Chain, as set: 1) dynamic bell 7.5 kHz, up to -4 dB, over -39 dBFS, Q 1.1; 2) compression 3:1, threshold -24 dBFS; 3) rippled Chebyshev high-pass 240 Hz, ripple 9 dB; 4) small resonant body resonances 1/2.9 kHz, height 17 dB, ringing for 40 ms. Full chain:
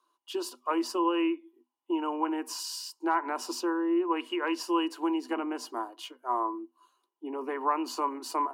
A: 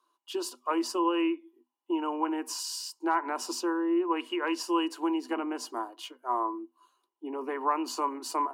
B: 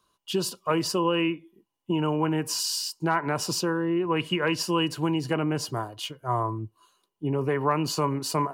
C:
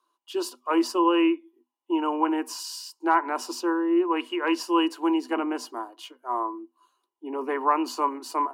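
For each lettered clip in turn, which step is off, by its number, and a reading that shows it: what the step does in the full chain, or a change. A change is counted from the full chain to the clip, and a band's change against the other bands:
1, 8 kHz band +2.5 dB; 3, 1 kHz band -5.0 dB; 2, momentary loudness spread change +2 LU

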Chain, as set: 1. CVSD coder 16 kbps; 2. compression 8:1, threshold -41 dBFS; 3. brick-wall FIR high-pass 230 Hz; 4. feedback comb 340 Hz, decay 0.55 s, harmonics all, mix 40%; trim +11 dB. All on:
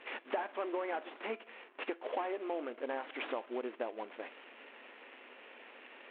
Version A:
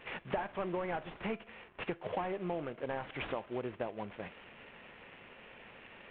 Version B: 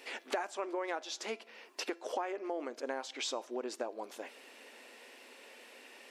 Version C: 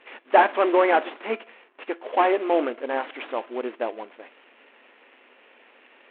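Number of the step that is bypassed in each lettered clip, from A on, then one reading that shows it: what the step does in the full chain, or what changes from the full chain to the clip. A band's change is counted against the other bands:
3, 250 Hz band +2.5 dB; 1, 4 kHz band +8.0 dB; 2, mean gain reduction 10.5 dB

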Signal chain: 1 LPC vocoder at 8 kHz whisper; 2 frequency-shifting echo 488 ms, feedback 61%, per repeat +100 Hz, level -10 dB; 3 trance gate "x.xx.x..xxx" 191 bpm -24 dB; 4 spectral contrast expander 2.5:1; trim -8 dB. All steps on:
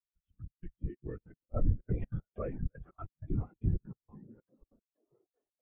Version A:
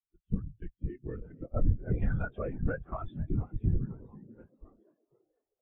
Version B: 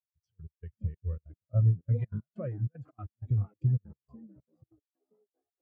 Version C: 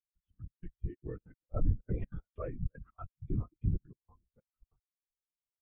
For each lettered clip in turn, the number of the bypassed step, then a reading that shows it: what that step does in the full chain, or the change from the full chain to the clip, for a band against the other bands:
3, 2 kHz band +12.0 dB; 1, crest factor change -2.5 dB; 2, momentary loudness spread change -3 LU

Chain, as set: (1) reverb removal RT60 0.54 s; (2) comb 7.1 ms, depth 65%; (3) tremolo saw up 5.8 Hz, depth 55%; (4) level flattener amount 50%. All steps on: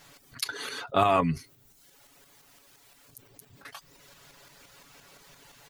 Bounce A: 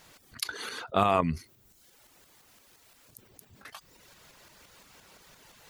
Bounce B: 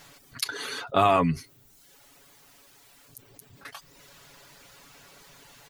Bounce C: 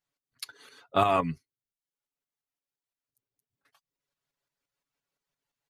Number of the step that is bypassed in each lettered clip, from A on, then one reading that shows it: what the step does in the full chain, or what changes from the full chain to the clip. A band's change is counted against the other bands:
2, loudness change -1.5 LU; 3, loudness change +2.0 LU; 4, crest factor change +1.5 dB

